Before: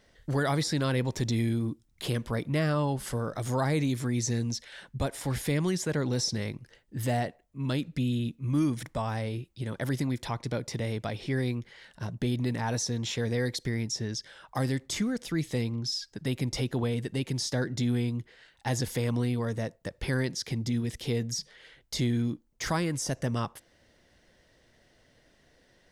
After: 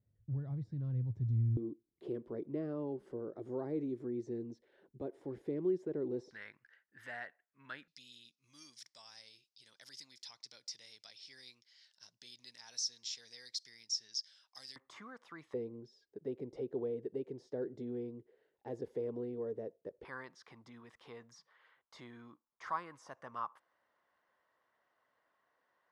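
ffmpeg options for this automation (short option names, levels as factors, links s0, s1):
-af "asetnsamples=n=441:p=0,asendcmd='1.57 bandpass f 370;6.31 bandpass f 1600;7.88 bandpass f 5100;14.76 bandpass f 1100;15.54 bandpass f 420;20.05 bandpass f 1100',bandpass=f=110:t=q:w=4.5:csg=0"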